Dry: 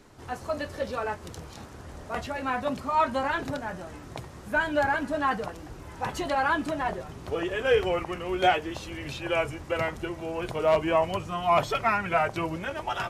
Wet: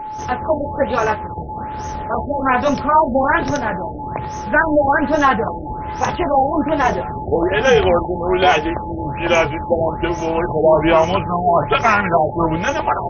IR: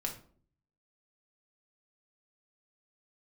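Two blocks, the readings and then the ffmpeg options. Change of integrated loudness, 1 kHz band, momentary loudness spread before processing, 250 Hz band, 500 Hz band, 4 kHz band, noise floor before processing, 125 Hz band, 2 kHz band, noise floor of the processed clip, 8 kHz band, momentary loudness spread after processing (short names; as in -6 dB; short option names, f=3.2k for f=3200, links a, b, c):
+11.0 dB, +11.5 dB, 15 LU, +13.0 dB, +11.5 dB, +8.5 dB, -45 dBFS, +12.5 dB, +10.0 dB, -28 dBFS, +10.5 dB, 11 LU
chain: -filter_complex "[0:a]aexciter=amount=14.9:drive=8.7:freq=7k,asplit=2[a][b];[b]asoftclip=type=tanh:threshold=-16.5dB,volume=-5.5dB[c];[a][c]amix=inputs=2:normalize=0,tremolo=f=290:d=0.621,aeval=exprs='val(0)+0.0126*sin(2*PI*860*n/s)':c=same,aresample=22050,aresample=44100,alimiter=level_in=13.5dB:limit=-1dB:release=50:level=0:latency=1,afftfilt=real='re*lt(b*sr/1024,830*pow(6600/830,0.5+0.5*sin(2*PI*1.2*pts/sr)))':imag='im*lt(b*sr/1024,830*pow(6600/830,0.5+0.5*sin(2*PI*1.2*pts/sr)))':win_size=1024:overlap=0.75,volume=-1dB"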